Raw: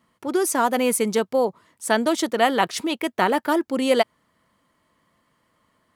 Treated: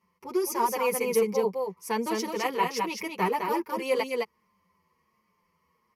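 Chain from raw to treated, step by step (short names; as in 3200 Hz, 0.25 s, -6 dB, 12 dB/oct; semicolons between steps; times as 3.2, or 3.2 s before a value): ripple EQ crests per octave 0.82, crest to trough 14 dB; on a send: echo 0.21 s -4 dB; on the sum: endless flanger 7.2 ms -1.3 Hz; gain -6.5 dB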